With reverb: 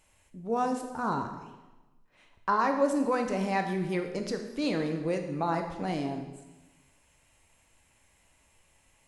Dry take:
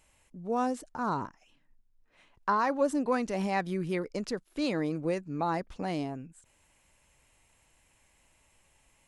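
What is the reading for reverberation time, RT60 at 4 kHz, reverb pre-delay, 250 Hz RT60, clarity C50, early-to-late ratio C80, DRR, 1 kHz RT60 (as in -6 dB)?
1.1 s, 1.1 s, 10 ms, 1.2 s, 7.0 dB, 9.0 dB, 4.5 dB, 1.1 s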